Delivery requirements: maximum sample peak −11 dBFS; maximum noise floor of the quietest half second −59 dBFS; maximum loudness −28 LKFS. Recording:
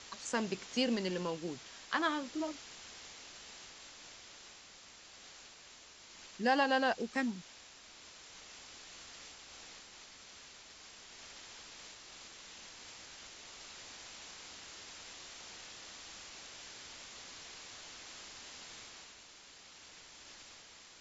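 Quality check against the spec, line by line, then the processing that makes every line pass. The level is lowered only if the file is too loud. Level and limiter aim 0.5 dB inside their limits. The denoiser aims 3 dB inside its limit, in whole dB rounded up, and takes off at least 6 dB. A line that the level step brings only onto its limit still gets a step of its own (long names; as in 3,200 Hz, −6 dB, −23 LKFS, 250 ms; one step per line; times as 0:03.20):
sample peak −16.0 dBFS: in spec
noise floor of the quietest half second −57 dBFS: out of spec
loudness −40.5 LKFS: in spec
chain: broadband denoise 6 dB, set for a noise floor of −57 dBFS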